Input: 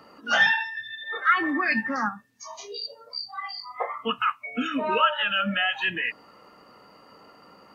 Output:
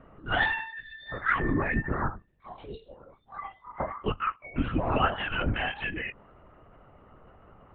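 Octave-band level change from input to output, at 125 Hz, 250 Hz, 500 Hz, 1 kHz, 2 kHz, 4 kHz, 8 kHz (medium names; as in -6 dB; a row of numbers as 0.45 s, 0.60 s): +11.5 dB, -2.0 dB, -1.5 dB, -5.0 dB, -6.5 dB, -10.0 dB, no reading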